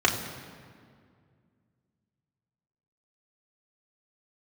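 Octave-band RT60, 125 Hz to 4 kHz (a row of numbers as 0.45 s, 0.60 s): 2.9 s, 2.8 s, 2.2 s, 2.0 s, 1.8 s, 1.4 s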